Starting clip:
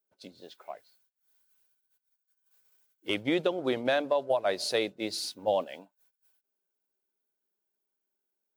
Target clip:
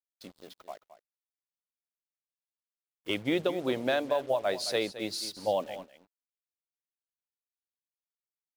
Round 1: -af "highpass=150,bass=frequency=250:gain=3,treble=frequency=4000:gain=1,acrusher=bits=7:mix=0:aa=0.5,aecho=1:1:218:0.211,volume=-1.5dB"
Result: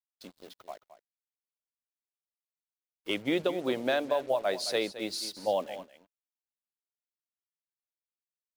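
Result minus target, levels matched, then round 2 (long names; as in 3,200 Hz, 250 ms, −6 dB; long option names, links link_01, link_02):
125 Hz band −3.5 dB
-af "bass=frequency=250:gain=3,treble=frequency=4000:gain=1,acrusher=bits=7:mix=0:aa=0.5,aecho=1:1:218:0.211,volume=-1.5dB"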